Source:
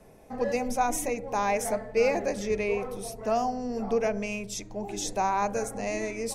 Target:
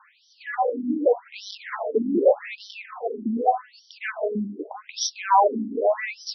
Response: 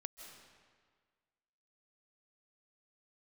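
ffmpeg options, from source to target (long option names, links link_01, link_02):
-filter_complex "[0:a]aeval=exprs='0.224*(cos(1*acos(clip(val(0)/0.224,-1,1)))-cos(1*PI/2))+0.0631*(cos(4*acos(clip(val(0)/0.224,-1,1)))-cos(4*PI/2))+0.0398*(cos(5*acos(clip(val(0)/0.224,-1,1)))-cos(5*PI/2))+0.0447*(cos(6*acos(clip(val(0)/0.224,-1,1)))-cos(6*PI/2))':channel_layout=same,acrossover=split=210|2400[link_01][link_02][link_03];[link_01]alimiter=level_in=7.5dB:limit=-24dB:level=0:latency=1,volume=-7.5dB[link_04];[link_03]aderivative[link_05];[link_04][link_02][link_05]amix=inputs=3:normalize=0,acrusher=bits=9:mix=0:aa=0.000001,asplit=2[link_06][link_07];[1:a]atrim=start_sample=2205[link_08];[link_07][link_08]afir=irnorm=-1:irlink=0,volume=-12dB[link_09];[link_06][link_09]amix=inputs=2:normalize=0,afftfilt=real='re*between(b*sr/1024,250*pow(4300/250,0.5+0.5*sin(2*PI*0.84*pts/sr))/1.41,250*pow(4300/250,0.5+0.5*sin(2*PI*0.84*pts/sr))*1.41)':imag='im*between(b*sr/1024,250*pow(4300/250,0.5+0.5*sin(2*PI*0.84*pts/sr))/1.41,250*pow(4300/250,0.5+0.5*sin(2*PI*0.84*pts/sr))*1.41)':win_size=1024:overlap=0.75,volume=8.5dB"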